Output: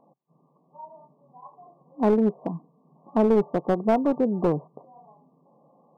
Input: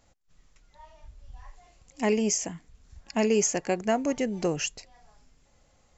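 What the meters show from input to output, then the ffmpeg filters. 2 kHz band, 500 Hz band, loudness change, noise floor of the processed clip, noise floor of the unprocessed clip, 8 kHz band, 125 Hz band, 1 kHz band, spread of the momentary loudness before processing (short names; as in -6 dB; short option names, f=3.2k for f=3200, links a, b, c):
-7.0 dB, +4.5 dB, +3.5 dB, -65 dBFS, -64 dBFS, n/a, +5.5 dB, +5.0 dB, 9 LU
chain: -filter_complex "[0:a]afftfilt=real='re*between(b*sr/4096,130,1200)':imag='im*between(b*sr/4096,130,1200)':win_size=4096:overlap=0.75,asplit=2[a][b];[b]acompressor=threshold=-38dB:ratio=5,volume=-1dB[c];[a][c]amix=inputs=2:normalize=0,aeval=exprs='clip(val(0),-1,0.0668)':c=same,volume=4dB"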